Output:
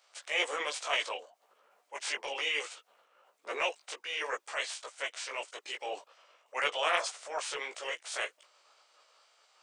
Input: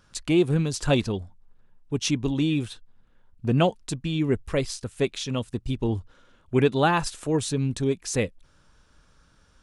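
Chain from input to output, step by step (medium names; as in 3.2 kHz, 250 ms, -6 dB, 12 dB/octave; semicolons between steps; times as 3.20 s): spectral peaks clipped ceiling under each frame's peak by 25 dB; high-pass 560 Hz 24 dB/octave; transient shaper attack -6 dB, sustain 0 dB; chorus voices 6, 1.2 Hz, delay 17 ms, depth 3.5 ms; formant shift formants -3 st; trim -3.5 dB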